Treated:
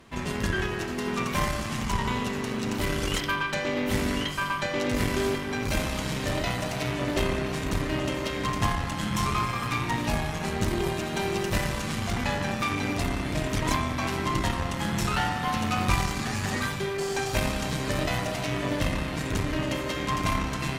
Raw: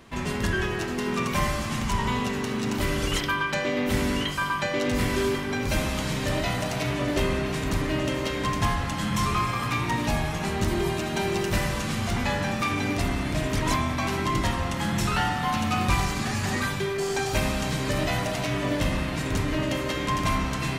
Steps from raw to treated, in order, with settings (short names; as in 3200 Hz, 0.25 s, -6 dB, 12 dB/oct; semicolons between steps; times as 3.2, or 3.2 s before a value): added harmonics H 3 -22 dB, 4 -19 dB, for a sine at -12 dBFS